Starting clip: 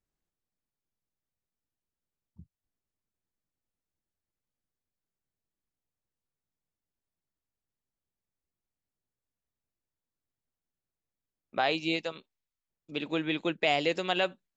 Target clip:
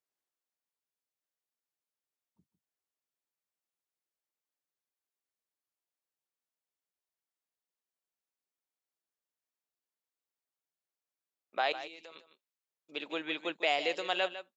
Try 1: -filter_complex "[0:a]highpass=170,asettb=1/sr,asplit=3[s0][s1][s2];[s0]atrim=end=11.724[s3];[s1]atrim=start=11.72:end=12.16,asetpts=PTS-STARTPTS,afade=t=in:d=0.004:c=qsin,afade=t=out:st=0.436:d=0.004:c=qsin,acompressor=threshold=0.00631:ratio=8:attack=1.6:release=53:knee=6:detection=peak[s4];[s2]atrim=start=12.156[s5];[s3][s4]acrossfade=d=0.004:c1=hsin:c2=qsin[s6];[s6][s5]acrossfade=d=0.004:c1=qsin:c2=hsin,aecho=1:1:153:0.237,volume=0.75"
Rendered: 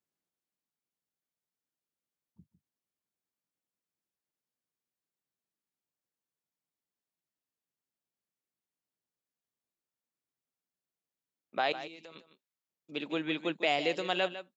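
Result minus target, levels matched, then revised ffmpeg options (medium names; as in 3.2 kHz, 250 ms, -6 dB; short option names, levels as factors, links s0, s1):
125 Hz band +13.0 dB
-filter_complex "[0:a]highpass=450,asettb=1/sr,asplit=3[s0][s1][s2];[s0]atrim=end=11.724[s3];[s1]atrim=start=11.72:end=12.16,asetpts=PTS-STARTPTS,afade=t=in:d=0.004:c=qsin,afade=t=out:st=0.436:d=0.004:c=qsin,acompressor=threshold=0.00631:ratio=8:attack=1.6:release=53:knee=6:detection=peak[s4];[s2]atrim=start=12.156[s5];[s3][s4]acrossfade=d=0.004:c1=hsin:c2=qsin[s6];[s6][s5]acrossfade=d=0.004:c1=qsin:c2=hsin,aecho=1:1:153:0.237,volume=0.75"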